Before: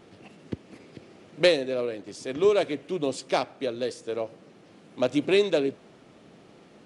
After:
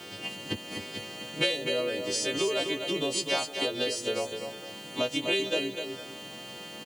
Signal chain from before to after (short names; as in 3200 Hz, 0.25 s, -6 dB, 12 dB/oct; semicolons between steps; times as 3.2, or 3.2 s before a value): frequency quantiser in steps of 2 st; HPF 65 Hz 24 dB/oct; bell 3000 Hz +9.5 dB 0.22 oct; compressor 5:1, threshold -35 dBFS, peak gain reduction 19.5 dB; LPF 3900 Hz 6 dB/oct; high shelf 2100 Hz +7 dB; bit-crush 10-bit; on a send: tapped delay 0.251/0.458 s -7/-17.5 dB; on the sum: gain +6.5 dB